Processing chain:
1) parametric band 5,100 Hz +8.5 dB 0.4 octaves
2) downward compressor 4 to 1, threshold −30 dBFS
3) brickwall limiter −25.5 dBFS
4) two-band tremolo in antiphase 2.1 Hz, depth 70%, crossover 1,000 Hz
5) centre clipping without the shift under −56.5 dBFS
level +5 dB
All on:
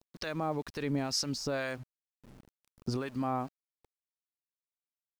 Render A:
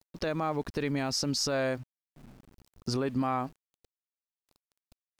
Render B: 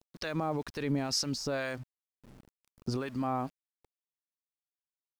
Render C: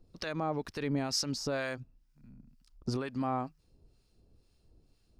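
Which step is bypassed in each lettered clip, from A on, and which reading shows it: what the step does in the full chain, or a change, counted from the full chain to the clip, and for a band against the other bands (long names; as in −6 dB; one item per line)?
4, change in momentary loudness spread −1 LU
2, change in momentary loudness spread +3 LU
5, distortion level −25 dB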